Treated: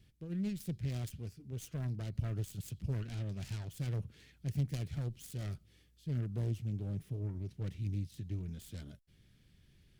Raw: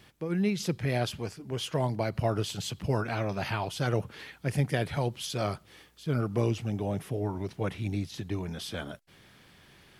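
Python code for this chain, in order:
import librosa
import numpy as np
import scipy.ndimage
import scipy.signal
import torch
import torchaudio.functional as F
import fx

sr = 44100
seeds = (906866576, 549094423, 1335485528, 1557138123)

y = fx.self_delay(x, sr, depth_ms=0.57)
y = fx.tone_stack(y, sr, knobs='10-0-1')
y = y * librosa.db_to_amplitude(8.0)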